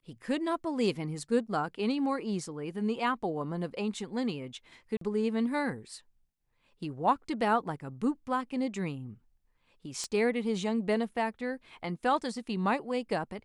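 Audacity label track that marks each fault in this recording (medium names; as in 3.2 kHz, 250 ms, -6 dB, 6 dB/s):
4.970000	5.010000	dropout 43 ms
10.040000	10.040000	pop -22 dBFS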